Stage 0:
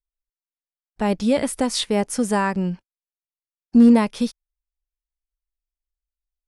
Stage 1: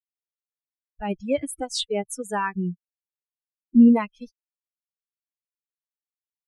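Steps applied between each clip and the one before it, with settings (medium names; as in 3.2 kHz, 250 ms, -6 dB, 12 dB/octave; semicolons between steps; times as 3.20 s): expander on every frequency bin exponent 3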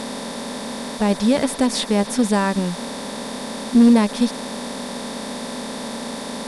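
spectral levelling over time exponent 0.2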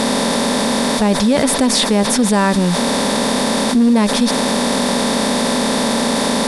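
level flattener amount 70%; trim -1 dB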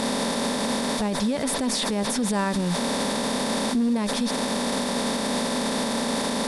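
peak limiter -11 dBFS, peak gain reduction 9.5 dB; trim -5.5 dB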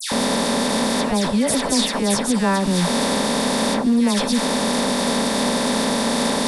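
phase dispersion lows, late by 119 ms, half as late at 2 kHz; trim +5.5 dB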